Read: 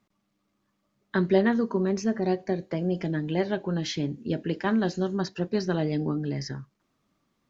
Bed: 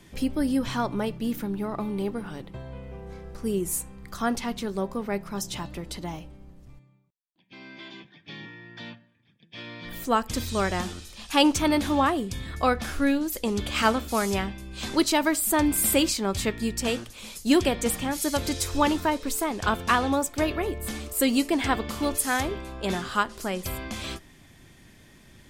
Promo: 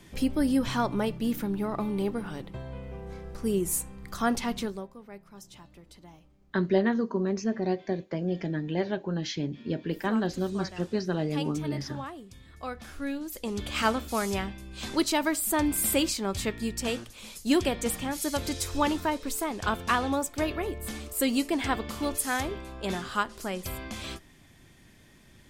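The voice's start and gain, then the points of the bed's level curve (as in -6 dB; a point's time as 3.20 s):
5.40 s, -2.5 dB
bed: 4.64 s 0 dB
4.92 s -16.5 dB
12.43 s -16.5 dB
13.75 s -3.5 dB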